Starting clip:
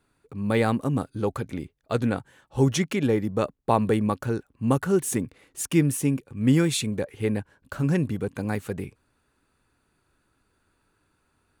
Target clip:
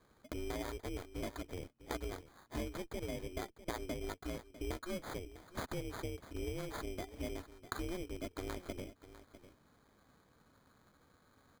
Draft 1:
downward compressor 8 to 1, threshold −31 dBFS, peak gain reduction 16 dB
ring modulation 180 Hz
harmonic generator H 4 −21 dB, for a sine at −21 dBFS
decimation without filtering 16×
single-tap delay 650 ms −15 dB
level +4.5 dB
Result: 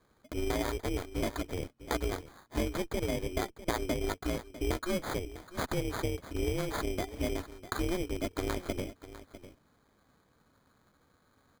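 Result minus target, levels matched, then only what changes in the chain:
downward compressor: peak gain reduction −8.5 dB
change: downward compressor 8 to 1, threshold −41 dBFS, peak gain reduction 25 dB

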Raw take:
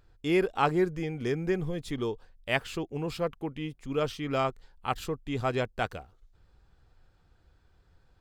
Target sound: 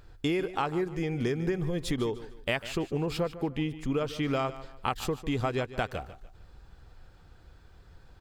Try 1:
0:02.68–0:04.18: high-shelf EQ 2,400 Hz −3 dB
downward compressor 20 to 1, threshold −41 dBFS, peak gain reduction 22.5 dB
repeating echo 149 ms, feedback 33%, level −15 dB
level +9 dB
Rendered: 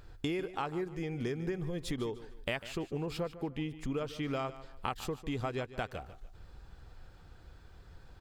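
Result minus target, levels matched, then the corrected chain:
downward compressor: peak gain reduction +6 dB
0:02.68–0:04.18: high-shelf EQ 2,400 Hz −3 dB
downward compressor 20 to 1, threshold −34.5 dBFS, peak gain reduction 16 dB
repeating echo 149 ms, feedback 33%, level −15 dB
level +9 dB

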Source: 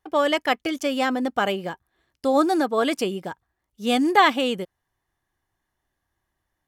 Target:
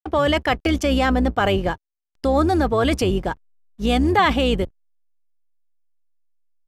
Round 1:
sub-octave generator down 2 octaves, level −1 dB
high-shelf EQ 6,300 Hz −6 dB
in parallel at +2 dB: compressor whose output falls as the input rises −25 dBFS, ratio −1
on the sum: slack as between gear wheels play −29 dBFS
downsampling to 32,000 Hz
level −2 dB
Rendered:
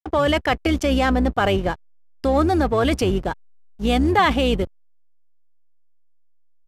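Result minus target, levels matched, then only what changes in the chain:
slack as between gear wheels: distortion +11 dB
change: slack as between gear wheels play −40.5 dBFS

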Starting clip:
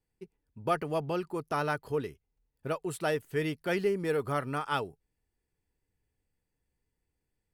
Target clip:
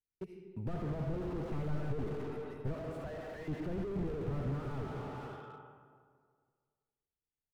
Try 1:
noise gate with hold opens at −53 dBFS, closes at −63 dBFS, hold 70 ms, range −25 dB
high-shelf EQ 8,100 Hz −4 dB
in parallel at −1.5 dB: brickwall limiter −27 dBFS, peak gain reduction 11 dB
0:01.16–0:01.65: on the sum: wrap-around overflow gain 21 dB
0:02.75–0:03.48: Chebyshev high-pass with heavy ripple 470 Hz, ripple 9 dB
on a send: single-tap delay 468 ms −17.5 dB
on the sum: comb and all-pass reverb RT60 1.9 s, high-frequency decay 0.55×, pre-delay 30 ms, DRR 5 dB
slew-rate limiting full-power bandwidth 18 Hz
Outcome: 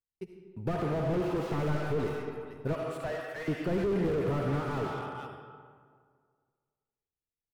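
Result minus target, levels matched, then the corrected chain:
slew-rate limiting: distortion −9 dB
noise gate with hold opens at −53 dBFS, closes at −63 dBFS, hold 70 ms, range −25 dB
high-shelf EQ 8,100 Hz −4 dB
in parallel at −1.5 dB: brickwall limiter −27 dBFS, peak gain reduction 11 dB
0:01.16–0:01.65: on the sum: wrap-around overflow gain 21 dB
0:02.75–0:03.48: Chebyshev high-pass with heavy ripple 470 Hz, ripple 9 dB
on a send: single-tap delay 468 ms −17.5 dB
on the sum: comb and all-pass reverb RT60 1.9 s, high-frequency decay 0.55×, pre-delay 30 ms, DRR 5 dB
slew-rate limiting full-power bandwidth 5 Hz

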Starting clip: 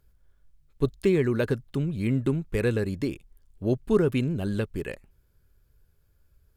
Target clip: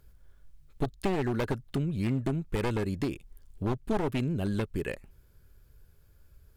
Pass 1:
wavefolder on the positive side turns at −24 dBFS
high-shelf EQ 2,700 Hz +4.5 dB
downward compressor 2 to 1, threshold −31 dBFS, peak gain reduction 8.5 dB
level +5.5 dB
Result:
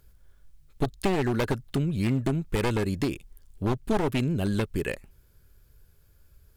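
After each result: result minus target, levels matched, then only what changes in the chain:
downward compressor: peak gain reduction −3.5 dB; 4,000 Hz band +2.5 dB
change: downward compressor 2 to 1, threshold −38 dBFS, peak gain reduction 12 dB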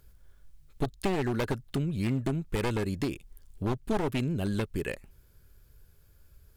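4,000 Hz band +2.5 dB
remove: high-shelf EQ 2,700 Hz +4.5 dB

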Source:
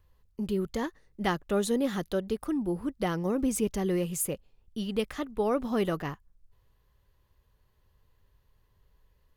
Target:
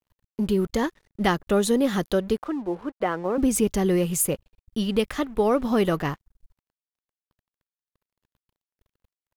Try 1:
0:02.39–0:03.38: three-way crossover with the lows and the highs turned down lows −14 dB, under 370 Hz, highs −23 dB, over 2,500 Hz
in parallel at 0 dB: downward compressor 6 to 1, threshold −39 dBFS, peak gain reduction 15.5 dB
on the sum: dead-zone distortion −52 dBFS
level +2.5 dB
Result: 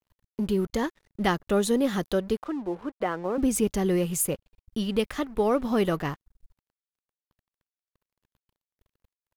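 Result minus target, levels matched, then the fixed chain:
downward compressor: peak gain reduction +9 dB
0:02.39–0:03.38: three-way crossover with the lows and the highs turned down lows −14 dB, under 370 Hz, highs −23 dB, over 2,500 Hz
in parallel at 0 dB: downward compressor 6 to 1, threshold −28 dBFS, peak gain reduction 6 dB
on the sum: dead-zone distortion −52 dBFS
level +2.5 dB

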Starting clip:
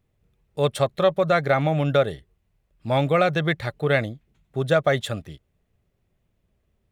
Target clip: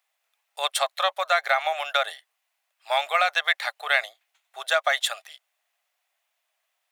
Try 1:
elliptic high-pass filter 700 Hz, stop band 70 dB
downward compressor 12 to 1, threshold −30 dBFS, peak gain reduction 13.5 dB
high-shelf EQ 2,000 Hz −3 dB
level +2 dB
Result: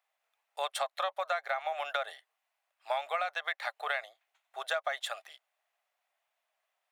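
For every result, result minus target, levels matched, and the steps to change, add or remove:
downward compressor: peak gain reduction +9 dB; 4,000 Hz band −2.5 dB
change: downward compressor 12 to 1, threshold −20 dBFS, peak gain reduction 4.5 dB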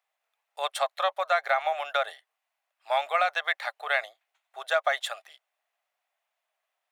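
4,000 Hz band −4.0 dB
change: high-shelf EQ 2,000 Hz +7.5 dB

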